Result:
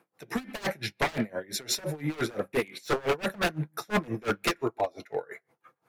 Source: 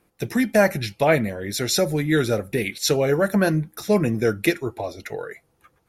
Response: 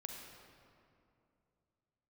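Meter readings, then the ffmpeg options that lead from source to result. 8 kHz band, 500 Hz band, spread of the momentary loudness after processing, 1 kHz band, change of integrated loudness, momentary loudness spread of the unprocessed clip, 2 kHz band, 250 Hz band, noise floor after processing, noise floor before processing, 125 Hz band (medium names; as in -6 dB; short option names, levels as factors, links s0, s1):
-8.0 dB, -10.0 dB, 8 LU, -4.0 dB, -9.5 dB, 12 LU, -6.5 dB, -11.0 dB, -78 dBFS, -66 dBFS, -11.0 dB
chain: -filter_complex "[0:a]highpass=f=120:w=0.5412,highpass=f=120:w=1.3066,equalizer=f=990:w=0.44:g=8.5,flanger=delay=6.1:depth=2:regen=-71:speed=0.45:shape=triangular,aeval=exprs='0.126*(abs(mod(val(0)/0.126+3,4)-2)-1)':c=same,asplit=2[s0][s1];[1:a]atrim=start_sample=2205,afade=t=out:st=0.2:d=0.01,atrim=end_sample=9261,lowpass=3000[s2];[s1][s2]afir=irnorm=-1:irlink=0,volume=0.237[s3];[s0][s3]amix=inputs=2:normalize=0,aeval=exprs='val(0)*pow(10,-25*(0.5-0.5*cos(2*PI*5.8*n/s))/20)':c=same"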